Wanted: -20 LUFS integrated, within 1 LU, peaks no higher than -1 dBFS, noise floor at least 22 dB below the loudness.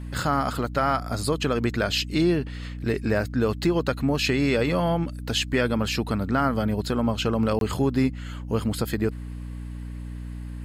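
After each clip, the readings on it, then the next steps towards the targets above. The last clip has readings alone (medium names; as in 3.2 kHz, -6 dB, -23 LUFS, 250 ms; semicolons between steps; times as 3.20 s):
dropouts 1; longest dropout 22 ms; hum 60 Hz; highest harmonic 300 Hz; hum level -32 dBFS; loudness -25.0 LUFS; peak level -10.5 dBFS; loudness target -20.0 LUFS
-> interpolate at 7.59 s, 22 ms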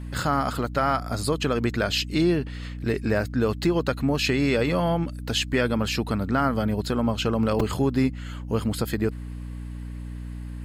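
dropouts 0; hum 60 Hz; highest harmonic 300 Hz; hum level -32 dBFS
-> hum notches 60/120/180/240/300 Hz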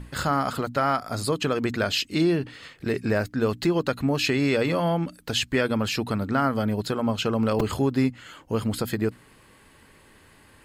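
hum not found; loudness -25.5 LUFS; peak level -10.0 dBFS; loudness target -20.0 LUFS
-> trim +5.5 dB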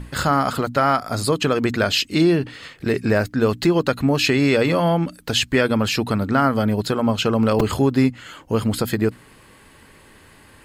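loudness -20.0 LUFS; peak level -4.5 dBFS; noise floor -49 dBFS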